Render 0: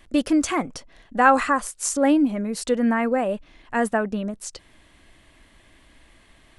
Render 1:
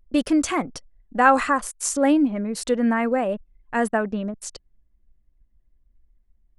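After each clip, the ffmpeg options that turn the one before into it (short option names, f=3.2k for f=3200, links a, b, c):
-af "anlmdn=1"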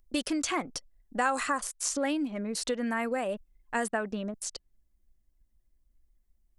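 -filter_complex "[0:a]acrossover=split=1500|5000[a][b][c];[a]acompressor=threshold=-24dB:ratio=4[d];[b]acompressor=threshold=-30dB:ratio=4[e];[c]acompressor=threshold=-46dB:ratio=4[f];[d][e][f]amix=inputs=3:normalize=0,bass=f=250:g=-4,treble=f=4k:g=10,volume=-3.5dB"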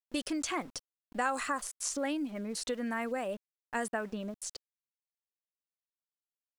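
-af "aeval=exprs='val(0)*gte(abs(val(0)),0.00376)':c=same,volume=-4dB"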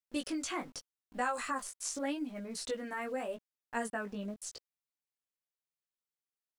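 -af "flanger=delay=16:depth=4:speed=0.84"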